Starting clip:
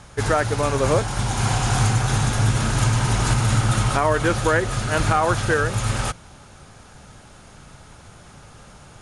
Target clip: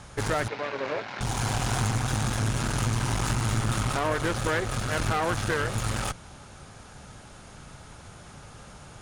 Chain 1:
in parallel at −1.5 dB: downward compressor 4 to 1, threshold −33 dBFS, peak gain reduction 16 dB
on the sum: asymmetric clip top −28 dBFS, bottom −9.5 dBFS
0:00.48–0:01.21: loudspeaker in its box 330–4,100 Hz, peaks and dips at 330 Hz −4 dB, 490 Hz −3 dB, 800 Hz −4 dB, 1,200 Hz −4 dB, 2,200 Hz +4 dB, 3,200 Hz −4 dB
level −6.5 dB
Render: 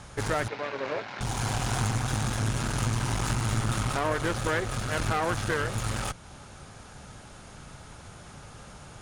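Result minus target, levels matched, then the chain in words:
downward compressor: peak gain reduction +8 dB
in parallel at −1.5 dB: downward compressor 4 to 1, threshold −22.5 dBFS, peak gain reduction 8 dB
on the sum: asymmetric clip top −28 dBFS, bottom −9.5 dBFS
0:00.48–0:01.21: loudspeaker in its box 330–4,100 Hz, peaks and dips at 330 Hz −4 dB, 490 Hz −3 dB, 800 Hz −4 dB, 1,200 Hz −4 dB, 2,200 Hz +4 dB, 3,200 Hz −4 dB
level −6.5 dB

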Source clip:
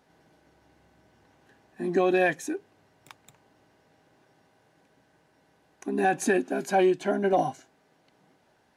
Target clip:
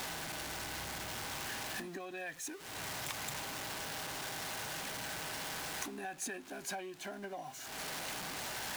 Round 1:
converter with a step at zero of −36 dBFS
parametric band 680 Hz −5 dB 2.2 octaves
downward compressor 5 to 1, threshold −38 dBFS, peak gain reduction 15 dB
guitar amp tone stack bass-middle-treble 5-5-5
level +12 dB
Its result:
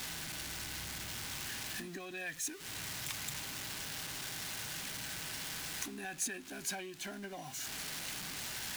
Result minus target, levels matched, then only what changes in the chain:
500 Hz band −5.0 dB
change: parametric band 680 Hz +5.5 dB 2.2 octaves

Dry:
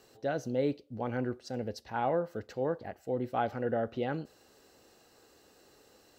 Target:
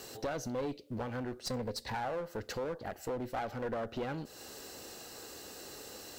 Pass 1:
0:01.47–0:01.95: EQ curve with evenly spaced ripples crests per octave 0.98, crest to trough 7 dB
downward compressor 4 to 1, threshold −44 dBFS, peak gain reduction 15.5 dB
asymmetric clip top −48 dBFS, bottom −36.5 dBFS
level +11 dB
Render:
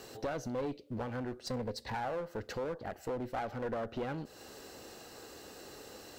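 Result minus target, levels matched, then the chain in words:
8,000 Hz band −5.0 dB
0:01.47–0:01.95: EQ curve with evenly spaced ripples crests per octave 0.98, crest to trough 7 dB
downward compressor 4 to 1, threshold −44 dBFS, peak gain reduction 15.5 dB
high-shelf EQ 3,900 Hz +7.5 dB
asymmetric clip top −48 dBFS, bottom −36.5 dBFS
level +11 dB

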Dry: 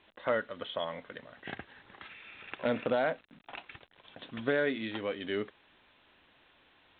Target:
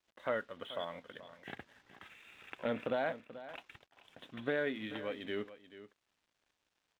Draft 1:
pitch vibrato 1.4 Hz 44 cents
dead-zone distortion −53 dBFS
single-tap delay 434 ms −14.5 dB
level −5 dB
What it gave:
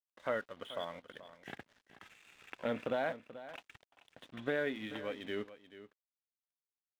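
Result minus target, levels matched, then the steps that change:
dead-zone distortion: distortion +7 dB
change: dead-zone distortion −61 dBFS

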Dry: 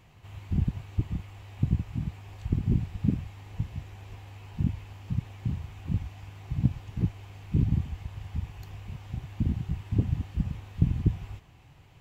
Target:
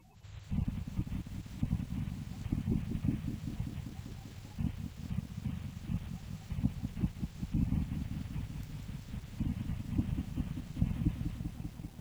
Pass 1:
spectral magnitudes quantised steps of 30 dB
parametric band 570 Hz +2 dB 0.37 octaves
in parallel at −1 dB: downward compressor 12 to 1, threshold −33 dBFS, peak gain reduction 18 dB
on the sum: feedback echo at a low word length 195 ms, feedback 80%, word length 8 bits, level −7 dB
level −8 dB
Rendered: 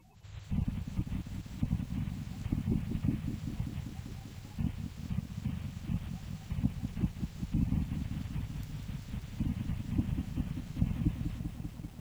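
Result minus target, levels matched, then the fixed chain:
downward compressor: peak gain reduction −10.5 dB
spectral magnitudes quantised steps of 30 dB
parametric band 570 Hz +2 dB 0.37 octaves
in parallel at −1 dB: downward compressor 12 to 1, threshold −44.5 dBFS, peak gain reduction 28.5 dB
on the sum: feedback echo at a low word length 195 ms, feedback 80%, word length 8 bits, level −7 dB
level −8 dB

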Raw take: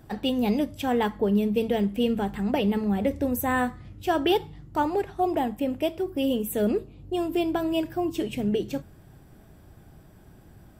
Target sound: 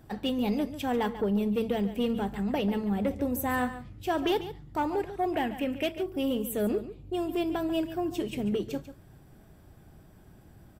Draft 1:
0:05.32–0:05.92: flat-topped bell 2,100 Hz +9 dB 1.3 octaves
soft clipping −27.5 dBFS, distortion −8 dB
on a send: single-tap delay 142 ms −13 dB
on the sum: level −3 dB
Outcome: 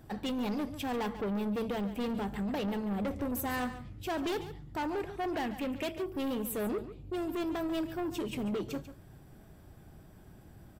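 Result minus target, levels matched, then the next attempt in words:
soft clipping: distortion +12 dB
0:05.32–0:05.92: flat-topped bell 2,100 Hz +9 dB 1.3 octaves
soft clipping −16 dBFS, distortion −21 dB
on a send: single-tap delay 142 ms −13 dB
on the sum: level −3 dB

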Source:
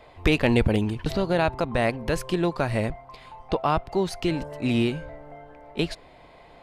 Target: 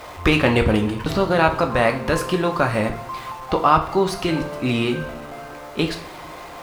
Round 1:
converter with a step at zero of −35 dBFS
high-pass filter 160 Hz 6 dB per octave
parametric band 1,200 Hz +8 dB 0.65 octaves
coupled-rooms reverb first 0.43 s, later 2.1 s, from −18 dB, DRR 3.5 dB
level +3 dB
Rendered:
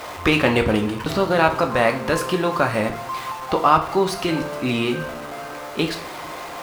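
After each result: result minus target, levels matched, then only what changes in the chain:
converter with a step at zero: distortion +6 dB; 125 Hz band −2.5 dB
change: converter with a step at zero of −41 dBFS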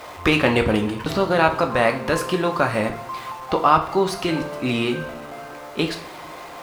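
125 Hz band −3.0 dB
change: high-pass filter 43 Hz 6 dB per octave

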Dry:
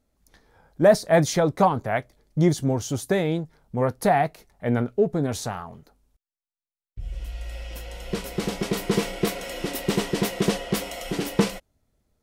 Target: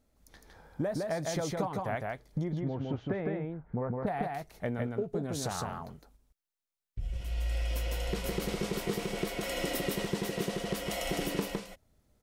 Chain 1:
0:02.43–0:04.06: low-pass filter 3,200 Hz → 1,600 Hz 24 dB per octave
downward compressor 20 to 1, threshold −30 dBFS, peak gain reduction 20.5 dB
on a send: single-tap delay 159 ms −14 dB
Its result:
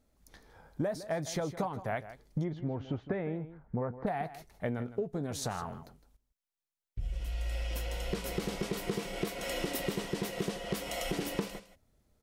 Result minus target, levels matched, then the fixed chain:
echo-to-direct −11.5 dB
0:02.43–0:04.06: low-pass filter 3,200 Hz → 1,600 Hz 24 dB per octave
downward compressor 20 to 1, threshold −30 dBFS, peak gain reduction 20.5 dB
on a send: single-tap delay 159 ms −2.5 dB

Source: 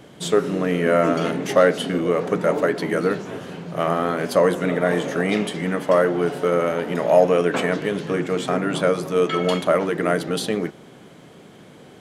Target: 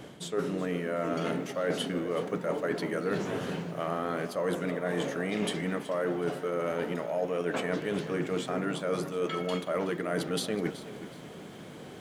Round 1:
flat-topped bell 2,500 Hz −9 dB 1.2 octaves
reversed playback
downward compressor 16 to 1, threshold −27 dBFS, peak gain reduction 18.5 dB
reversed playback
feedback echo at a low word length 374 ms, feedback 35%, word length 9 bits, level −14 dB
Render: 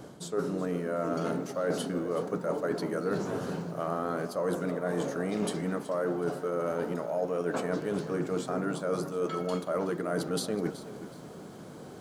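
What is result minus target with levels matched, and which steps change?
2,000 Hz band −4.0 dB
remove: flat-topped bell 2,500 Hz −9 dB 1.2 octaves

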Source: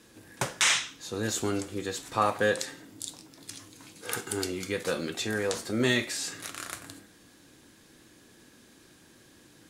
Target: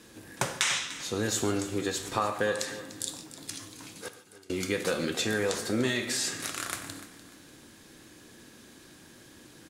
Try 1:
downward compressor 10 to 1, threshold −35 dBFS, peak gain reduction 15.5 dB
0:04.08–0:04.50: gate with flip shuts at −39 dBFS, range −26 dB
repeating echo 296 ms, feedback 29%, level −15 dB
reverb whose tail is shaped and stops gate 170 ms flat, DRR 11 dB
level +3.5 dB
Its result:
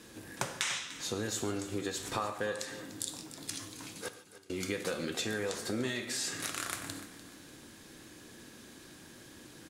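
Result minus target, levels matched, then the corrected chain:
downward compressor: peak gain reduction +7 dB
downward compressor 10 to 1, threshold −27.5 dBFS, peak gain reduction 9 dB
0:04.08–0:04.50: gate with flip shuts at −39 dBFS, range −26 dB
repeating echo 296 ms, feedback 29%, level −15 dB
reverb whose tail is shaped and stops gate 170 ms flat, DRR 11 dB
level +3.5 dB

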